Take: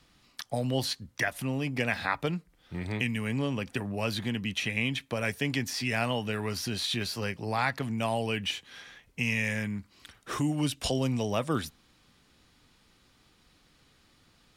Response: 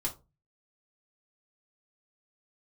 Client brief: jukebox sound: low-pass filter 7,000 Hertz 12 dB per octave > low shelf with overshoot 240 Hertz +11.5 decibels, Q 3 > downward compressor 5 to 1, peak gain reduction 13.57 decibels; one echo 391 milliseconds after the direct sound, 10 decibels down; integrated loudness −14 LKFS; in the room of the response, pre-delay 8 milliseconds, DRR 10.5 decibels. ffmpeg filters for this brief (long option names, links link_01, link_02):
-filter_complex "[0:a]aecho=1:1:391:0.316,asplit=2[link_01][link_02];[1:a]atrim=start_sample=2205,adelay=8[link_03];[link_02][link_03]afir=irnorm=-1:irlink=0,volume=-13.5dB[link_04];[link_01][link_04]amix=inputs=2:normalize=0,lowpass=7000,lowshelf=frequency=240:width_type=q:width=3:gain=11.5,acompressor=threshold=-26dB:ratio=5,volume=16dB"